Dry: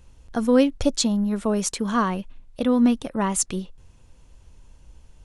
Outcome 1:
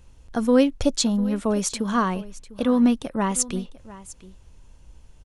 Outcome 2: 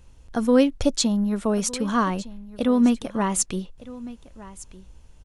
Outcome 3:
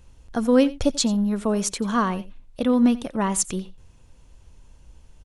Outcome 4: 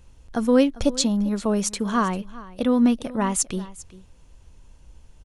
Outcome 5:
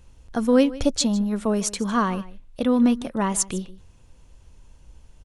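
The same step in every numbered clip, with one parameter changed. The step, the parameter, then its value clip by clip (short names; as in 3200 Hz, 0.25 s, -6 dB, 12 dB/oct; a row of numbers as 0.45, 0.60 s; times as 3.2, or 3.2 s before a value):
echo, time: 700, 1209, 88, 397, 154 ms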